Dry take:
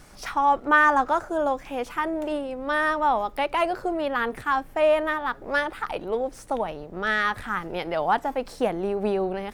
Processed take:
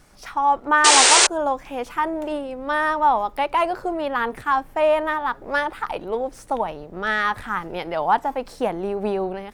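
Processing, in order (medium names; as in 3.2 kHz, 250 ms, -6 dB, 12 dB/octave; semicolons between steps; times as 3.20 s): dynamic bell 940 Hz, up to +6 dB, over -37 dBFS, Q 2.9; level rider gain up to 5 dB; painted sound noise, 0.84–1.27 s, 330–9400 Hz -10 dBFS; trim -4 dB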